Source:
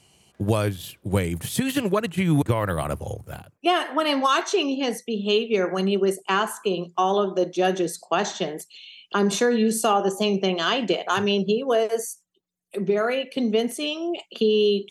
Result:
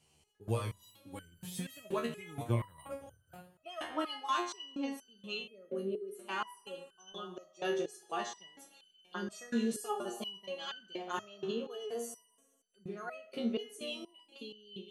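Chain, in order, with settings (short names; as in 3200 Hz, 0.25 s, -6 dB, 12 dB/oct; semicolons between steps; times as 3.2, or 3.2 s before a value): 7.12–7.52 low shelf 370 Hz -7 dB; Schroeder reverb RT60 2 s, combs from 30 ms, DRR 13.5 dB; 5.43–6.15 spectral gain 620–8600 Hz -16 dB; stepped resonator 4.2 Hz 77–1500 Hz; gain -3 dB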